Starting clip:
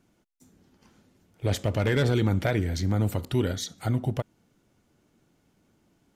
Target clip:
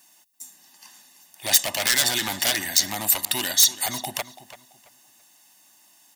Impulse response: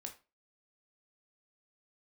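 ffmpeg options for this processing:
-filter_complex "[0:a]highpass=510,aecho=1:1:1.1:0.89,aeval=exprs='0.0473*(abs(mod(val(0)/0.0473+3,4)-2)-1)':channel_layout=same,asplit=2[link_01][link_02];[link_02]adelay=335,lowpass=frequency=4000:poles=1,volume=-14dB,asplit=2[link_03][link_04];[link_04]adelay=335,lowpass=frequency=4000:poles=1,volume=0.28,asplit=2[link_05][link_06];[link_06]adelay=335,lowpass=frequency=4000:poles=1,volume=0.28[link_07];[link_03][link_05][link_07]amix=inputs=3:normalize=0[link_08];[link_01][link_08]amix=inputs=2:normalize=0,crystalizer=i=7:c=0,volume=2.5dB"

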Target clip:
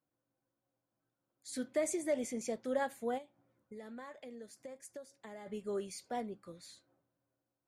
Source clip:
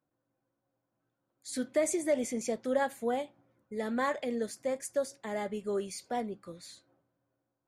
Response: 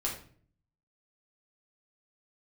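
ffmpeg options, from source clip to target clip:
-filter_complex "[0:a]asplit=3[link_01][link_02][link_03];[link_01]afade=type=out:start_time=3.17:duration=0.02[link_04];[link_02]acompressor=threshold=-42dB:ratio=5,afade=type=in:start_time=3.17:duration=0.02,afade=type=out:start_time=5.46:duration=0.02[link_05];[link_03]afade=type=in:start_time=5.46:duration=0.02[link_06];[link_04][link_05][link_06]amix=inputs=3:normalize=0,volume=-5dB"

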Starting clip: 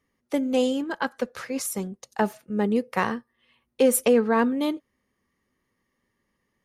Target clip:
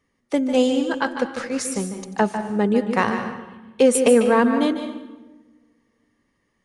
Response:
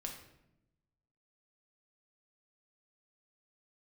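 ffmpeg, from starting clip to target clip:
-filter_complex "[0:a]asplit=2[link_01][link_02];[1:a]atrim=start_sample=2205,asetrate=29547,aresample=44100,adelay=148[link_03];[link_02][link_03]afir=irnorm=-1:irlink=0,volume=-7.5dB[link_04];[link_01][link_04]amix=inputs=2:normalize=0,aresample=22050,aresample=44100,volume=4dB"

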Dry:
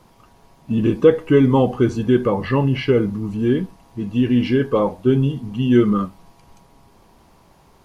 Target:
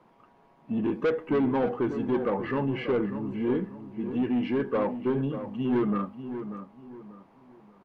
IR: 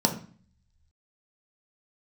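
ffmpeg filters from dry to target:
-filter_complex "[0:a]acrossover=split=160 2700:gain=0.141 1 0.112[link_01][link_02][link_03];[link_01][link_02][link_03]amix=inputs=3:normalize=0,asoftclip=type=tanh:threshold=-15dB,asplit=2[link_04][link_05];[link_05]adelay=589,lowpass=frequency=2000:poles=1,volume=-10dB,asplit=2[link_06][link_07];[link_07]adelay=589,lowpass=frequency=2000:poles=1,volume=0.33,asplit=2[link_08][link_09];[link_09]adelay=589,lowpass=frequency=2000:poles=1,volume=0.33,asplit=2[link_10][link_11];[link_11]adelay=589,lowpass=frequency=2000:poles=1,volume=0.33[link_12];[link_06][link_08][link_10][link_12]amix=inputs=4:normalize=0[link_13];[link_04][link_13]amix=inputs=2:normalize=0,volume=-5.5dB"

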